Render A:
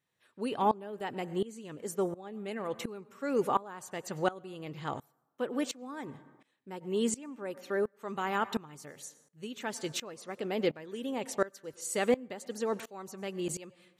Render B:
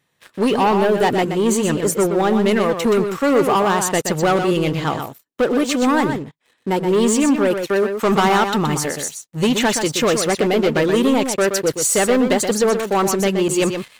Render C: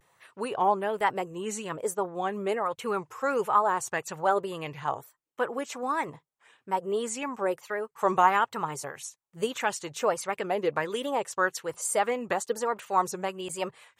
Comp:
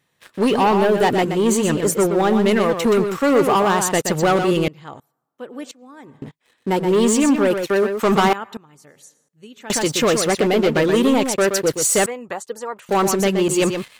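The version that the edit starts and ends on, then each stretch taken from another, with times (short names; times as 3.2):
B
4.68–6.22 from A
8.33–9.7 from A
12.06–12.89 from C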